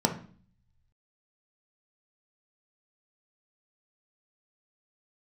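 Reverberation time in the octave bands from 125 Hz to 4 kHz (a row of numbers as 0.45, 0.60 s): 1.3, 0.75, 0.45, 0.45, 0.40, 0.45 s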